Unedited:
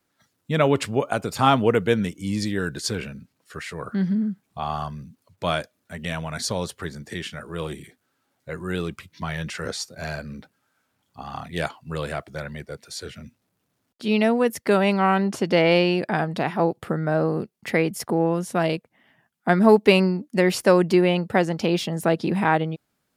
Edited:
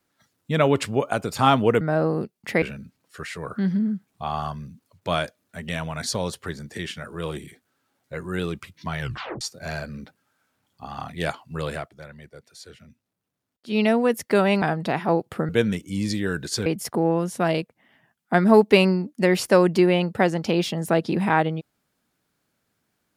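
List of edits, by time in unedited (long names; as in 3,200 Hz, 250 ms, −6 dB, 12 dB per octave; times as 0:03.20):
0:01.81–0:02.98: swap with 0:17.00–0:17.81
0:09.36: tape stop 0.41 s
0:12.10–0:14.16: duck −9.5 dB, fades 0.16 s
0:14.98–0:16.13: remove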